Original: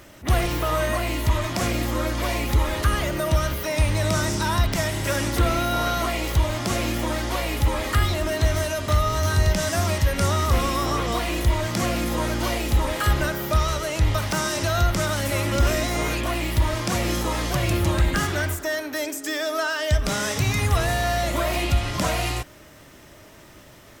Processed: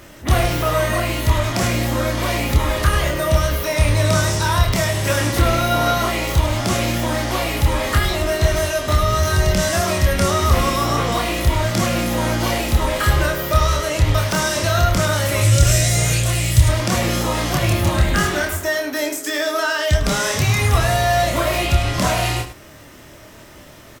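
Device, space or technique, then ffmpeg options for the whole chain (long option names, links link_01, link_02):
slapback doubling: -filter_complex "[0:a]asettb=1/sr,asplit=3[link_01][link_02][link_03];[link_01]atrim=end=15.414[link_04];[link_02]atrim=start=15.41:end=16.69,asetpts=PTS-STARTPTS,afade=type=in:duration=0.004:curve=qsin,afade=type=out:start_time=1.276:duration=0.004:curve=qsin,equalizer=frequency=125:width_type=o:width=1:gain=11,equalizer=frequency=250:width_type=o:width=1:gain=-11,equalizer=frequency=1000:width_type=o:width=1:gain=-10,equalizer=frequency=8000:width_type=o:width=1:gain=11[link_05];[link_03]atrim=start=16.686[link_06];[link_04][link_05]acrossfade=duration=0.004:curve1=hsin:curve2=qsin[link_07];[link_07][link_06]acrossfade=duration=0.004:curve1=qsin:curve2=hsin,asplit=3[link_08][link_09][link_10];[link_09]adelay=27,volume=-3.5dB[link_11];[link_10]adelay=103,volume=-11dB[link_12];[link_08][link_11][link_12]amix=inputs=3:normalize=0,volume=3.5dB"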